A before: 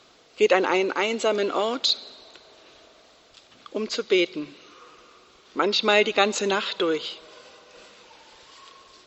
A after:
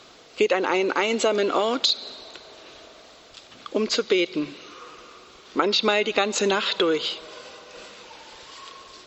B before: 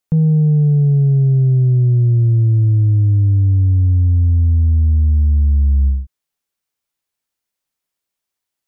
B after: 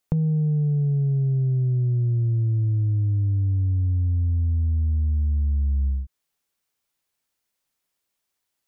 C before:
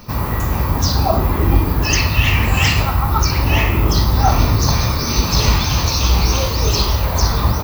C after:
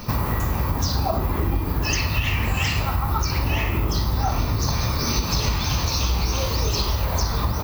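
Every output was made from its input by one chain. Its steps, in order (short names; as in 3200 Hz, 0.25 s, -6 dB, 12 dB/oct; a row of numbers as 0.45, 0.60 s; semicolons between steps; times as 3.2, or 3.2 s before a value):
compressor 5:1, threshold -24 dBFS; match loudness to -23 LUFS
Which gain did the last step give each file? +6.0, +2.0, +4.0 dB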